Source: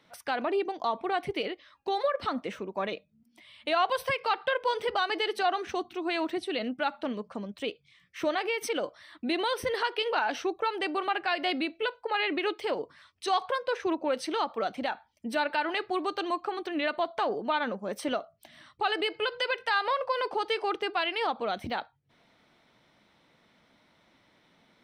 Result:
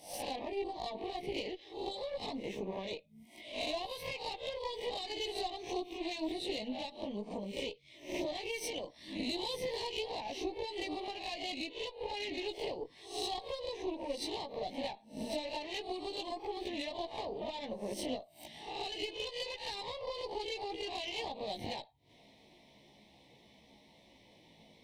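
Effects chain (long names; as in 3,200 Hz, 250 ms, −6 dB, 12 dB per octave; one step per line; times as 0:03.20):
peak hold with a rise ahead of every peak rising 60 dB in 0.43 s
dynamic equaliser 4,000 Hz, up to +7 dB, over −51 dBFS, Q 4
downward compressor 6 to 1, threshold −39 dBFS, peak gain reduction 17.5 dB
multi-voice chorus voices 4, 0.38 Hz, delay 17 ms, depth 2.9 ms
harmonic generator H 6 −20 dB, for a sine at −28 dBFS
Butterworth band-reject 1,400 Hz, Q 1.1
level +5.5 dB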